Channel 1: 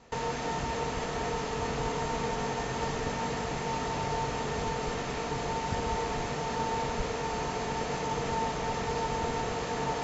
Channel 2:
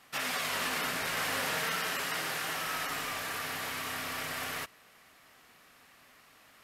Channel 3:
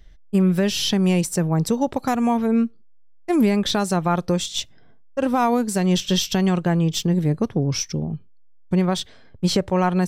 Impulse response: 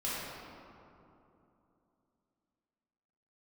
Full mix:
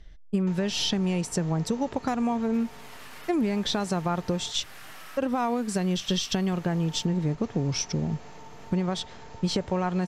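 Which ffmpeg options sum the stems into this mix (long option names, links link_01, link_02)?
-filter_complex "[0:a]adelay=350,volume=-9.5dB,asplit=3[link_01][link_02][link_03];[link_01]atrim=end=4.52,asetpts=PTS-STARTPTS,afade=type=out:start_time=4.516:duration=0.004:curve=hsin[link_04];[link_02]atrim=start=4.52:end=6.52,asetpts=PTS-STARTPTS,volume=0[link_05];[link_03]atrim=start=6.52,asetpts=PTS-STARTPTS,afade=type=in:duration=0.004:curve=hsin[link_06];[link_04][link_05][link_06]concat=n=3:v=0:a=1[link_07];[1:a]adelay=2400,volume=2dB[link_08];[2:a]lowpass=7400,acompressor=threshold=-24dB:ratio=4,volume=0dB,asplit=2[link_09][link_10];[link_10]apad=whole_len=398604[link_11];[link_08][link_11]sidechaincompress=threshold=-44dB:ratio=5:attack=25:release=429[link_12];[link_07][link_12]amix=inputs=2:normalize=0,bandreject=frequency=480:width=12,acompressor=threshold=-43dB:ratio=10,volume=0dB[link_13];[link_09][link_13]amix=inputs=2:normalize=0"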